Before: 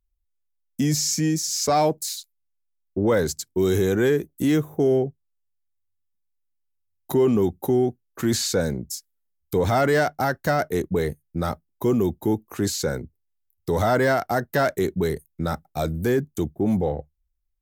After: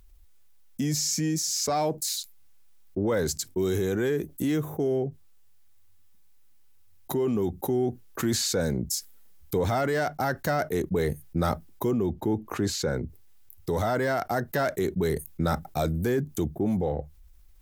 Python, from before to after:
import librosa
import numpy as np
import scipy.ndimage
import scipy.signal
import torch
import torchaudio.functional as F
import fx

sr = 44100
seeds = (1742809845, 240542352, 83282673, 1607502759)

y = fx.rider(x, sr, range_db=10, speed_s=0.5)
y = fx.lowpass(y, sr, hz=2700.0, slope=6, at=(11.91, 13.03))
y = fx.env_flatten(y, sr, amount_pct=50)
y = y * 10.0 ** (-6.5 / 20.0)